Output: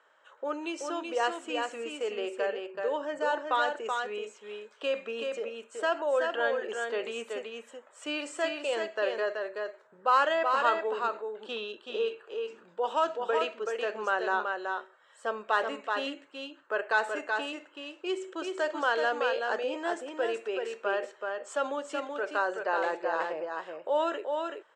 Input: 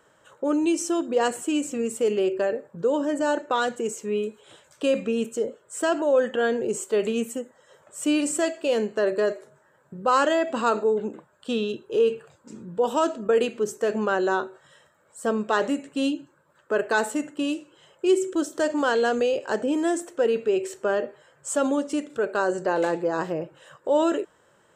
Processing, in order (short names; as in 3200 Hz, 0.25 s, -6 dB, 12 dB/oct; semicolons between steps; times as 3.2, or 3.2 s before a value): BPF 710–3600 Hz; echo 0.378 s -4.5 dB; gain -1.5 dB